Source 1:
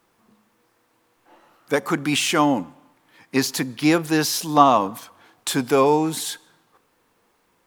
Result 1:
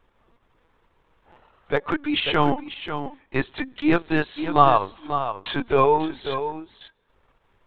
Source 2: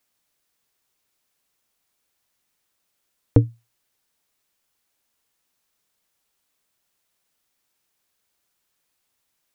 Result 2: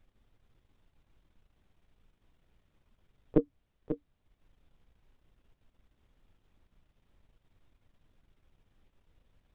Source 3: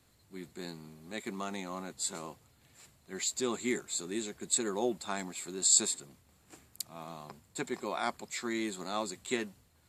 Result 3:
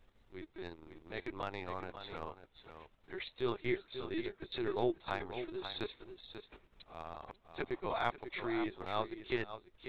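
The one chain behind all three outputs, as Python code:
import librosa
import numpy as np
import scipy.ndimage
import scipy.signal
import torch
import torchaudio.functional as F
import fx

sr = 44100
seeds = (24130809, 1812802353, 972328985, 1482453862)

p1 = scipy.signal.sosfilt(scipy.signal.butter(4, 260.0, 'highpass', fs=sr, output='sos'), x)
p2 = fx.lpc_vocoder(p1, sr, seeds[0], excitation='pitch_kept', order=16)
p3 = fx.dmg_noise_colour(p2, sr, seeds[1], colour='brown', level_db=-65.0)
p4 = p3 + fx.echo_single(p3, sr, ms=540, db=-9.5, dry=0)
y = fx.transient(p4, sr, attack_db=-2, sustain_db=-8)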